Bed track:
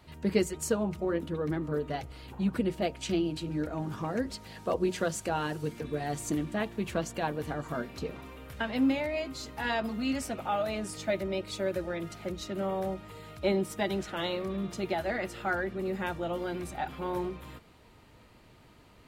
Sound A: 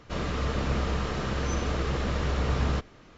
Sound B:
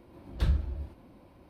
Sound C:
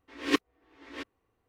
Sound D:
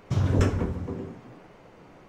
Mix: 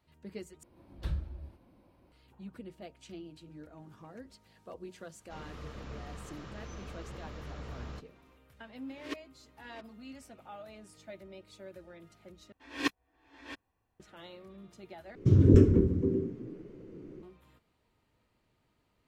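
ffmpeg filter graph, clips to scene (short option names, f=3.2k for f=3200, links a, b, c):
-filter_complex "[3:a]asplit=2[a][b];[0:a]volume=-17dB[c];[b]aecho=1:1:1.2:0.5[d];[4:a]lowshelf=f=530:t=q:w=3:g=12.5[e];[c]asplit=4[f][g][h][i];[f]atrim=end=0.634[j];[2:a]atrim=end=1.49,asetpts=PTS-STARTPTS,volume=-8dB[k];[g]atrim=start=2.116:end=12.524[l];[d]atrim=end=1.48,asetpts=PTS-STARTPTS,volume=-4.5dB[m];[h]atrim=start=13.996:end=15.154[n];[e]atrim=end=2.08,asetpts=PTS-STARTPTS,volume=-11dB[o];[i]atrim=start=17.226[p];[1:a]atrim=end=3.17,asetpts=PTS-STARTPTS,volume=-16.5dB,afade=t=in:d=0.004:c=hsin,afade=t=out:st=3.166:d=0.004:c=hsin,adelay=5200[q];[a]atrim=end=1.48,asetpts=PTS-STARTPTS,volume=-14.5dB,afade=t=in:d=0.004:c=hsin,afade=t=out:st=1.476:d=0.004:c=hsin,adelay=8780[r];[j][k]acrossfade=d=0.004:c1=hsin:c2=hsin[s];[s][l]acrossfade=d=0.004:c1=hsin:c2=hsin[t];[t][m]acrossfade=d=0.004:c1=hsin:c2=hsin[u];[u][n]acrossfade=d=0.004:c1=hsin:c2=hsin[v];[v][o]acrossfade=d=0.004:c1=hsin:c2=hsin[w];[w][p]acrossfade=d=0.004:c1=hsin:c2=hsin[x];[x][q][r]amix=inputs=3:normalize=0"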